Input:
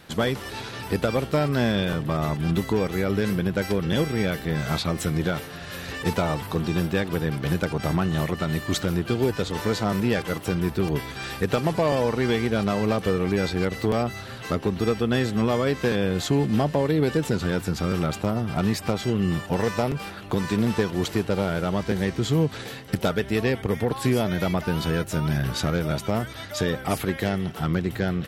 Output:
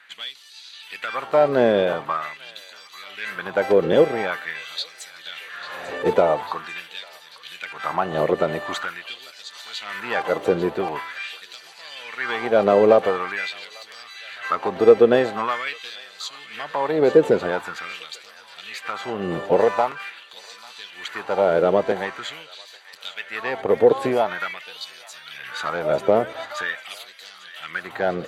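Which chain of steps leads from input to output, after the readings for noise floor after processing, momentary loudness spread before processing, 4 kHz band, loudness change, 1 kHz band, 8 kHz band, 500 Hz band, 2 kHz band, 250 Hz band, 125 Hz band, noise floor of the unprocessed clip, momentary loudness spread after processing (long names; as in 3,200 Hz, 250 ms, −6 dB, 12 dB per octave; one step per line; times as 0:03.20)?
−46 dBFS, 5 LU, 0.0 dB, +3.0 dB, +5.0 dB, can't be measured, +6.0 dB, +3.0 dB, −5.5 dB, −13.5 dB, −38 dBFS, 21 LU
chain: RIAA equalisation playback
notch filter 5,300 Hz, Q 6.3
automatic gain control
auto-filter high-pass sine 0.45 Hz 480–4,900 Hz
delay with a high-pass on its return 845 ms, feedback 67%, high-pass 1,700 Hz, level −14 dB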